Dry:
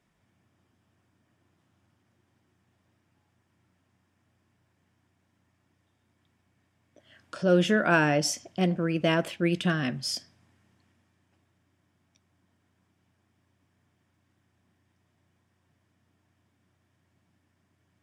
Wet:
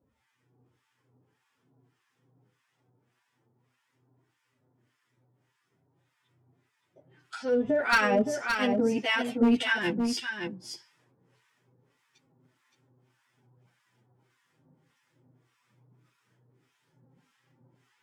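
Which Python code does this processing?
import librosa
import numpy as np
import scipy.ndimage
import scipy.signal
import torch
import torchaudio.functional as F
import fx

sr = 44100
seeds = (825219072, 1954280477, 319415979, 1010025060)

p1 = fx.high_shelf(x, sr, hz=4400.0, db=-2.5)
p2 = fx.rider(p1, sr, range_db=10, speed_s=0.5)
p3 = p1 + (p2 * 10.0 ** (-2.0 / 20.0))
p4 = fx.harmonic_tremolo(p3, sr, hz=1.7, depth_pct=100, crossover_hz=940.0)
p5 = fx.chorus_voices(p4, sr, voices=4, hz=0.21, base_ms=13, depth_ms=2.6, mix_pct=55)
p6 = fx.clip_asym(p5, sr, top_db=-19.5, bottom_db=-18.0)
p7 = fx.pitch_keep_formants(p6, sr, semitones=5.5)
p8 = p7 + fx.echo_single(p7, sr, ms=569, db=-6.0, dry=0)
y = p8 * 10.0 ** (3.0 / 20.0)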